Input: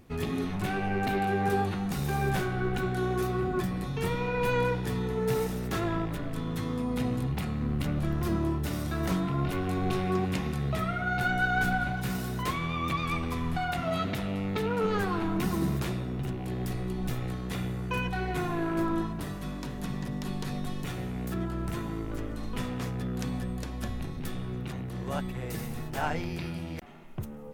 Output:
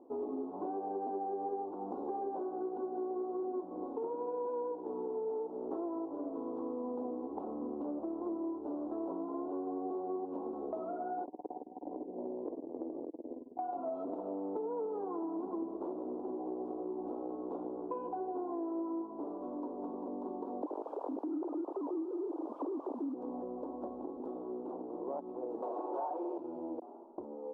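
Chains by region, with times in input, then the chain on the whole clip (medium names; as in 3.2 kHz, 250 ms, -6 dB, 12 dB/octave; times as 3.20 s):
11.24–13.59 s: steep low-pass 650 Hz + compressor with a negative ratio -34 dBFS, ratio -0.5 + transformer saturation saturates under 310 Hz
20.62–23.14 s: formants replaced by sine waves + word length cut 6-bit, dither triangular + vibrato with a chosen wave square 6.3 Hz, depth 100 cents
25.62–26.38 s: comb filter that takes the minimum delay 5.5 ms + high-pass 290 Hz 24 dB/octave + overdrive pedal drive 22 dB, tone 6.5 kHz, clips at -19 dBFS
whole clip: elliptic band-pass 290–960 Hz, stop band 40 dB; tilt EQ -1.5 dB/octave; compression, threshold -38 dBFS; trim +2.5 dB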